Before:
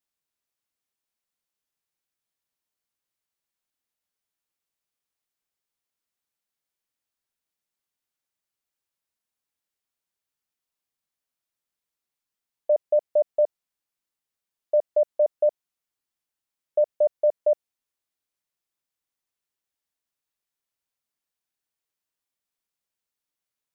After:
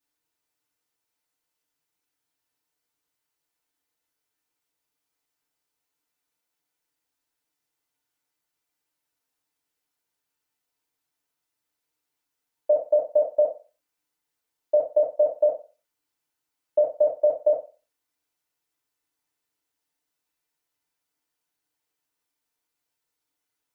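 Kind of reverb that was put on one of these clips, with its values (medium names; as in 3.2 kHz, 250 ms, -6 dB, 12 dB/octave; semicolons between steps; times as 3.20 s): FDN reverb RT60 0.33 s, low-frequency decay 0.75×, high-frequency decay 0.65×, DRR -6.5 dB; trim -1.5 dB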